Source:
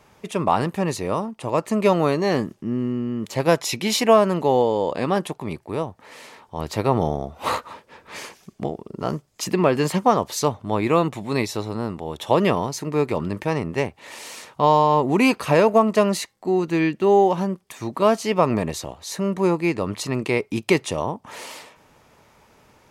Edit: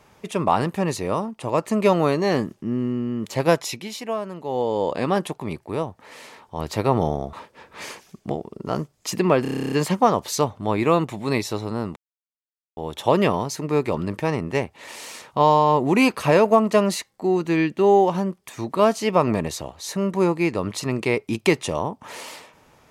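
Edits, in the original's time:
3.50–4.84 s: dip -12.5 dB, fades 0.40 s linear
7.33–7.67 s: delete
9.76 s: stutter 0.03 s, 11 plays
12.00 s: insert silence 0.81 s

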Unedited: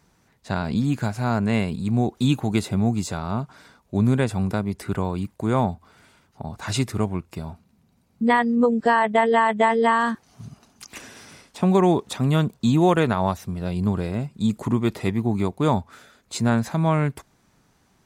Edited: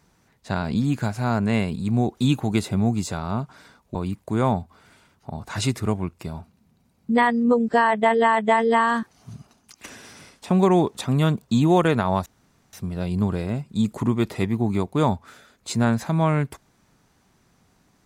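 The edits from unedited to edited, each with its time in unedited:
3.95–5.07 s: delete
10.45–10.96 s: fade out, to -9.5 dB
13.38 s: insert room tone 0.47 s

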